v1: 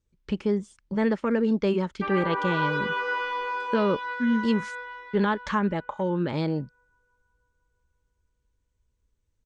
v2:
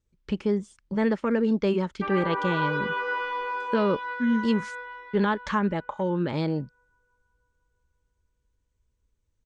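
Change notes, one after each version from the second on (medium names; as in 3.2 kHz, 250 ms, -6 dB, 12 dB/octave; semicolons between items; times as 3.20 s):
background: add treble shelf 4.8 kHz -10 dB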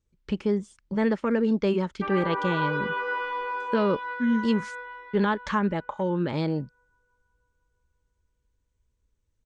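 background: add treble shelf 4.5 kHz -6.5 dB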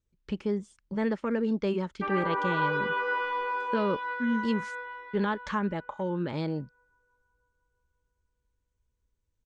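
speech -4.5 dB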